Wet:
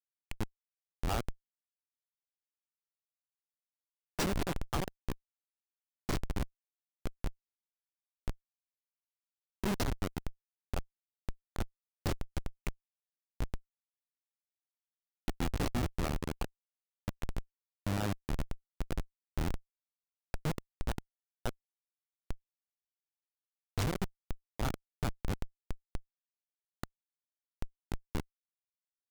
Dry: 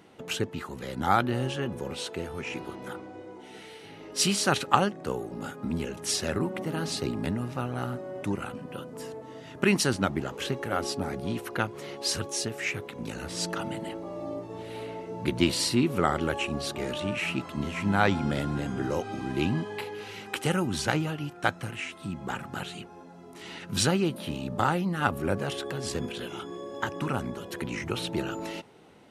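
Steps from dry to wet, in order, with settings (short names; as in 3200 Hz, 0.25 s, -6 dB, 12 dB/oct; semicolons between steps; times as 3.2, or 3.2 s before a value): pre-echo 49 ms -18 dB; Schmitt trigger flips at -20.5 dBFS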